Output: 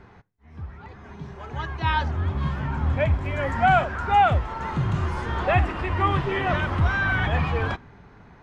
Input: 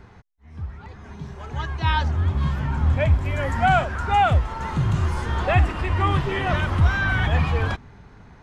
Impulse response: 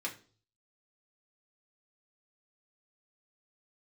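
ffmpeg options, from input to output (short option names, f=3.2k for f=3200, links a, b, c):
-filter_complex "[0:a]lowpass=f=2.9k:p=1,lowshelf=f=120:g=-6.5,asplit=2[a][b];[1:a]atrim=start_sample=2205[c];[b][c]afir=irnorm=-1:irlink=0,volume=-17dB[d];[a][d]amix=inputs=2:normalize=0"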